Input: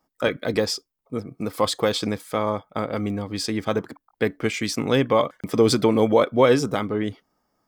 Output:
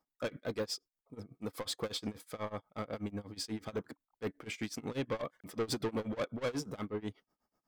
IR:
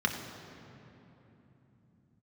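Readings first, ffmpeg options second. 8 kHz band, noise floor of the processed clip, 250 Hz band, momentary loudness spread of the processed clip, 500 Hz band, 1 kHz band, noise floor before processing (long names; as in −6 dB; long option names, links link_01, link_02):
−12.5 dB, below −85 dBFS, −16.0 dB, 7 LU, −18.0 dB, −18.5 dB, −79 dBFS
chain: -af "asoftclip=type=tanh:threshold=-20.5dB,tremolo=f=8.2:d=0.94,volume=-8dB"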